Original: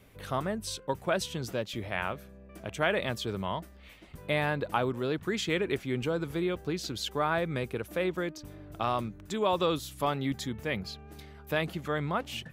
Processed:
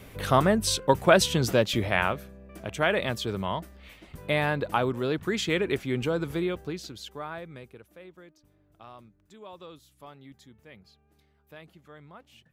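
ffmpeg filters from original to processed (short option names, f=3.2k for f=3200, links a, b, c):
-af "volume=10.5dB,afade=t=out:st=1.69:d=0.66:silence=0.421697,afade=t=out:st=6.32:d=0.62:silence=0.334965,afade=t=out:st=6.94:d=1.03:silence=0.266073"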